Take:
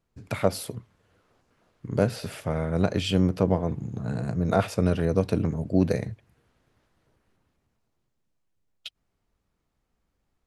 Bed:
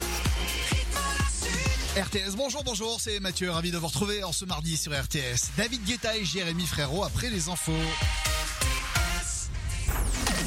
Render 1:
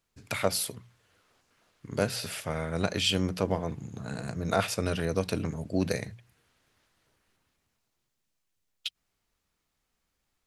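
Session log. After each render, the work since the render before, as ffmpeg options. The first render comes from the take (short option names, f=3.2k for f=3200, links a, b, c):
-af "tiltshelf=f=1.3k:g=-6.5,bandreject=f=60:t=h:w=6,bandreject=f=120:t=h:w=6,bandreject=f=180:t=h:w=6"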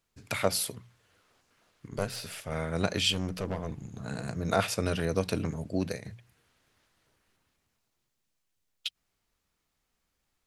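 -filter_complex "[0:a]asettb=1/sr,asplit=3[a][b][c];[a]atrim=end=1.884[d];[b]atrim=start=1.88:end=2.52,asetpts=PTS-STARTPTS,afade=t=in:d=0.004:c=qsin,afade=t=out:st=0.636:d=0.004:c=qsin,aeval=exprs='(tanh(10*val(0)+0.75)-tanh(0.75))/10':c=same[e];[c]atrim=start=2.516[f];[d][e]acrossfade=d=0.004:c1=hsin:c2=qsin[g];[g][f]acrossfade=d=0.004:c1=qsin:c2=hsin,asettb=1/sr,asplit=3[h][i][j];[h]atrim=end=3.124[k];[i]atrim=start=3.12:end=4.03,asetpts=PTS-STARTPTS,afade=t=in:d=0.004:c=qsin,afade=t=out:st=0.906:d=0.004:c=qsin,aeval=exprs='(tanh(22.4*val(0)+0.45)-tanh(0.45))/22.4':c=same[l];[j]atrim=start=4.026[m];[k][l]acrossfade=d=0.004:c1=hsin:c2=qsin[n];[n][m]acrossfade=d=0.004:c1=qsin:c2=hsin,asplit=2[o][p];[o]atrim=end=6.05,asetpts=PTS-STARTPTS,afade=t=out:st=5.5:d=0.55:c=qsin:silence=0.266073[q];[p]atrim=start=6.05,asetpts=PTS-STARTPTS,afade=t=in:d=0.004:c=hsin:silence=0.266073[r];[q][r]concat=n=2:v=0:a=1"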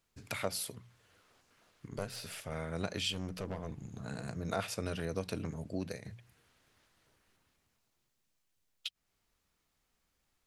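-af "acompressor=threshold=-47dB:ratio=1.5"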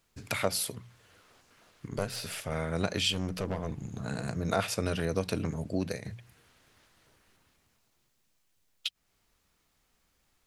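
-af "volume=6.5dB"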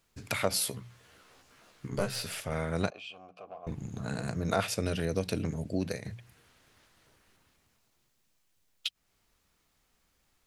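-filter_complex "[0:a]asettb=1/sr,asplit=3[a][b][c];[a]atrim=end=0.494[d];[b]atrim=start=0.49:end=2.23,asetpts=PTS-STARTPTS,afade=t=in:d=0.004:c=qsin,afade=t=out:st=1.736:d=0.004:c=qsin,asplit=2[e][f];[f]adelay=15,volume=-3dB[g];[e][g]amix=inputs=2:normalize=0,atrim=end_sample=76734[h];[c]atrim=start=2.226[i];[d][h]acrossfade=d=0.004:c1=hsin:c2=qsin[j];[j][i]acrossfade=d=0.004:c1=qsin:c2=hsin,asettb=1/sr,asplit=3[k][l][m];[k]atrim=end=2.904[n];[l]atrim=start=2.9:end=3.67,asetpts=PTS-STARTPTS,afade=t=in:d=0.004:c=qsin,afade=t=out:st=0.766:d=0.004:c=qsin,asplit=3[o][p][q];[o]bandpass=f=730:t=q:w=8,volume=0dB[r];[p]bandpass=f=1.09k:t=q:w=8,volume=-6dB[s];[q]bandpass=f=2.44k:t=q:w=8,volume=-9dB[t];[r][s][t]amix=inputs=3:normalize=0[u];[m]atrim=start=3.666[v];[n][u]acrossfade=d=0.004:c1=hsin:c2=qsin[w];[w][v]acrossfade=d=0.004:c1=qsin:c2=hsin,asettb=1/sr,asplit=3[x][y][z];[x]atrim=end=4.684[aa];[y]atrim=start=4.68:end=5.84,asetpts=PTS-STARTPTS,afade=t=in:d=0.004:c=qsin,afade=t=out:st=1.156:d=0.004:c=qsin,equalizer=f=1.1k:w=1.5:g=-6[ab];[z]atrim=start=5.836[ac];[aa][ab]acrossfade=d=0.004:c1=hsin:c2=qsin[ad];[ad][ac]acrossfade=d=0.004:c1=qsin:c2=hsin"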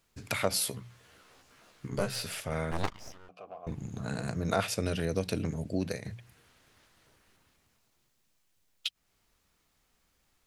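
-filter_complex "[0:a]asettb=1/sr,asplit=3[a][b][c];[a]atrim=end=2.714[d];[b]atrim=start=2.71:end=3.29,asetpts=PTS-STARTPTS,afade=t=in:d=0.004:c=qsin,afade=t=out:st=0.576:d=0.004:c=qsin,aeval=exprs='abs(val(0))':c=same[e];[c]atrim=start=3.286[f];[d][e]acrossfade=d=0.004:c1=hsin:c2=qsin[g];[g][f]acrossfade=d=0.004:c1=qsin:c2=hsin"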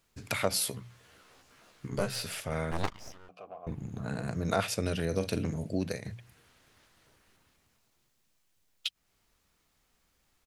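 -filter_complex "[0:a]asettb=1/sr,asplit=3[a][b][c];[a]atrim=end=3.474[d];[b]atrim=start=3.47:end=4.32,asetpts=PTS-STARTPTS,afade=t=in:d=0.004:c=qsin,afade=t=out:st=0.846:d=0.004:c=qsin,equalizer=f=6.1k:t=o:w=1.8:g=-7[e];[c]atrim=start=4.316[f];[d][e]acrossfade=d=0.004:c1=hsin:c2=qsin[g];[g][f]acrossfade=d=0.004:c1=qsin:c2=hsin,asplit=3[h][i][j];[h]afade=t=out:st=5.1:d=0.02[k];[i]asplit=2[l][m];[m]adelay=46,volume=-11dB[n];[l][n]amix=inputs=2:normalize=0,afade=t=in:st=5.1:d=0.02,afade=t=out:st=5.71:d=0.02[o];[j]afade=t=in:st=5.71:d=0.02[p];[k][o][p]amix=inputs=3:normalize=0"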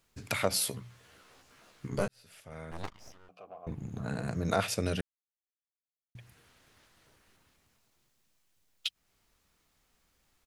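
-filter_complex "[0:a]asplit=4[a][b][c][d];[a]atrim=end=2.08,asetpts=PTS-STARTPTS,afade=t=out:st=2.076:d=0.004:c=hsin[e];[b]atrim=start=2.08:end=5.01,asetpts=PTS-STARTPTS,afade=t=in:d=1.91,afade=t=out:st=2.926:d=0.004:c=hsin[f];[c]atrim=start=5.01:end=6.15,asetpts=PTS-STARTPTS,volume=0[g];[d]atrim=start=6.15,asetpts=PTS-STARTPTS,afade=t=in:d=0.004:c=hsin[h];[e][f][g][h]concat=n=4:v=0:a=1"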